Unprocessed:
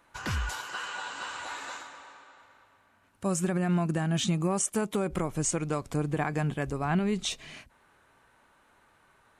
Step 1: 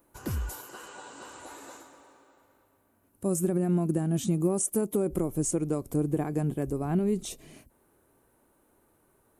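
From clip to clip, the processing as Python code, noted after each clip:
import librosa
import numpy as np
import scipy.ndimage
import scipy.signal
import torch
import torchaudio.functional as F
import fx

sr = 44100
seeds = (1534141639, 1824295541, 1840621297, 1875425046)

y = fx.curve_eq(x, sr, hz=(190.0, 340.0, 880.0, 1700.0, 3700.0, 7300.0, 13000.0), db=(0, 6, -7, -13, -12, -3, 13))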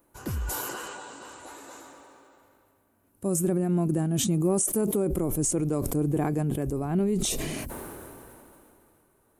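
y = fx.sustainer(x, sr, db_per_s=21.0)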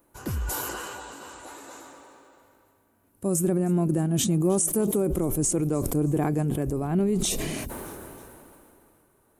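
y = fx.echo_feedback(x, sr, ms=312, feedback_pct=48, wet_db=-22.0)
y = y * 10.0 ** (1.5 / 20.0)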